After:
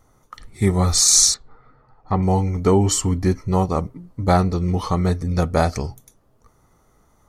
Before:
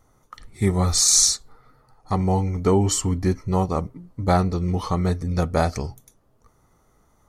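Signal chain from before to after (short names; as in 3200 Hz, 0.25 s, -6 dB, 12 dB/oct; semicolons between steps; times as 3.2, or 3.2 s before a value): 1.34–2.23 LPF 2600 Hz 12 dB/oct; gain +2.5 dB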